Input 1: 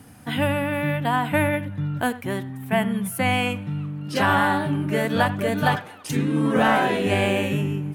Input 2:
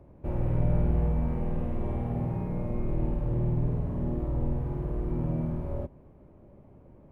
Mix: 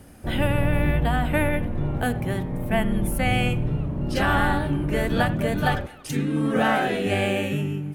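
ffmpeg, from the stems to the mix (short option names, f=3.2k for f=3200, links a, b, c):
-filter_complex "[0:a]bandreject=f=1k:w=7.1,volume=-2dB[a];[1:a]volume=2dB[b];[a][b]amix=inputs=2:normalize=0"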